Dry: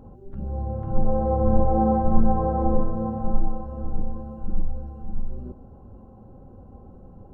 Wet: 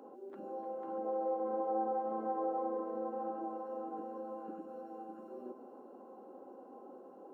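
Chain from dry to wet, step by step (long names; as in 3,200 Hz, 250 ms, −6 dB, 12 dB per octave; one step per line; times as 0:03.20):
Butterworth high-pass 290 Hz 36 dB per octave
downward compressor 2 to 1, threshold −42 dBFS, peak gain reduction 12 dB
echo with a time of its own for lows and highs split 690 Hz, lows 170 ms, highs 300 ms, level −10 dB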